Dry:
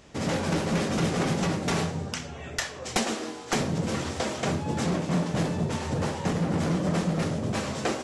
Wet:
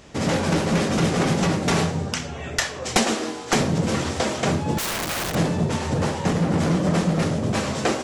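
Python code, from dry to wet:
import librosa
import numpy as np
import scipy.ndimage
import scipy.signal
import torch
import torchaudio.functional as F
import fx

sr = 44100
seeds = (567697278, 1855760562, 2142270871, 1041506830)

p1 = fx.rider(x, sr, range_db=10, speed_s=2.0)
p2 = x + F.gain(torch.from_numpy(p1), -1.0).numpy()
y = fx.overflow_wrap(p2, sr, gain_db=21.5, at=(4.78, 5.35))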